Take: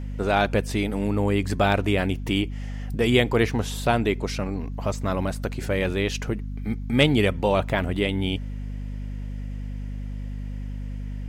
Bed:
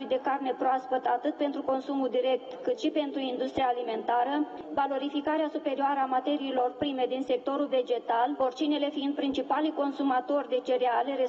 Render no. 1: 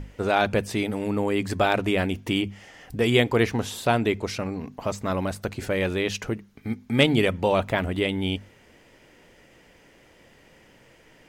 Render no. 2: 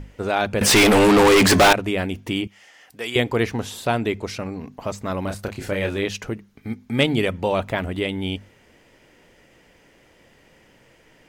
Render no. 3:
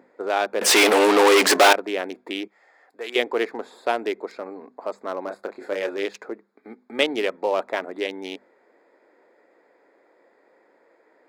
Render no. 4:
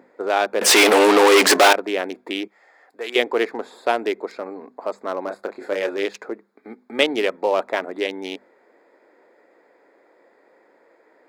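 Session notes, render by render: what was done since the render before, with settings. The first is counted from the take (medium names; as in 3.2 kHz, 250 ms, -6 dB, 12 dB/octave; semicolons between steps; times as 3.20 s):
hum notches 50/100/150/200/250 Hz
0.61–1.73 s: overdrive pedal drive 37 dB, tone 7.7 kHz, clips at -6 dBFS; 2.47–3.16 s: high-pass 1.2 kHz 6 dB/octave; 5.22–6.06 s: doubling 30 ms -5 dB
local Wiener filter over 15 samples; high-pass 340 Hz 24 dB/octave
trim +3 dB; peak limiter -3 dBFS, peak gain reduction 2.5 dB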